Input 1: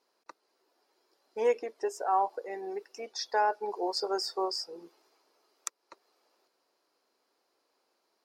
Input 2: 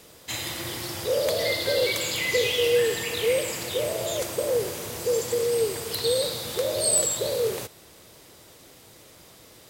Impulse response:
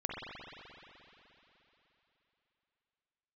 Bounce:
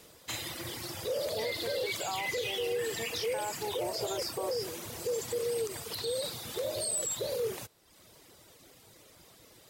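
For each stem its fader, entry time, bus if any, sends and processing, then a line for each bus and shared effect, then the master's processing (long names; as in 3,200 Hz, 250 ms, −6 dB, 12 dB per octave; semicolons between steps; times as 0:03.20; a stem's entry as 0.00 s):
0.0 dB, 0.00 s, no send, downward compressor, threshold −30 dBFS, peak gain reduction 9 dB
−4.5 dB, 0.00 s, no send, reverb reduction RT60 0.85 s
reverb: not used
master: brickwall limiter −25 dBFS, peak gain reduction 9.5 dB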